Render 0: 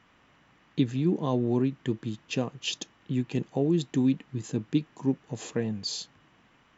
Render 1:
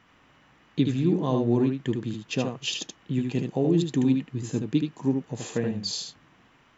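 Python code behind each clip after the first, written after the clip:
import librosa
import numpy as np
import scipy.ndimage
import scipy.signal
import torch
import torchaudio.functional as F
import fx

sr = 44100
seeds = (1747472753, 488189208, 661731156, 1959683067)

y = x + 10.0 ** (-5.0 / 20.0) * np.pad(x, (int(76 * sr / 1000.0), 0))[:len(x)]
y = y * 10.0 ** (1.5 / 20.0)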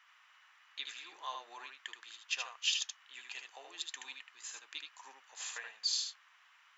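y = scipy.signal.sosfilt(scipy.signal.butter(4, 1100.0, 'highpass', fs=sr, output='sos'), x)
y = y * 10.0 ** (-2.0 / 20.0)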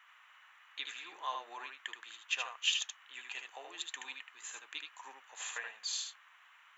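y = fx.peak_eq(x, sr, hz=5000.0, db=-14.0, octaves=0.55)
y = y * 10.0 ** (4.0 / 20.0)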